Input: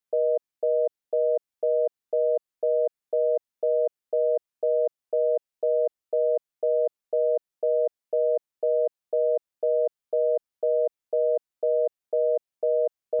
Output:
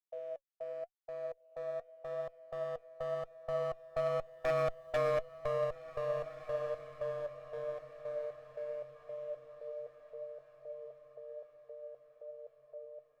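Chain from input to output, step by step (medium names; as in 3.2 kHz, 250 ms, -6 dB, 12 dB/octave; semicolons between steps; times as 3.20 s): Doppler pass-by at 4.86 s, 14 m/s, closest 5.5 m; high-pass 590 Hz 24 dB/octave; in parallel at 0 dB: compression, threshold -38 dBFS, peak gain reduction 11.5 dB; on the sum: one-sided clip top -38 dBFS; flange 0.87 Hz, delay 0.8 ms, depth 4.1 ms, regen +69%; wavefolder -29 dBFS; on a send: echo that smears into a reverb 1626 ms, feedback 41%, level -13.5 dB; on the sum: trim +4.5 dB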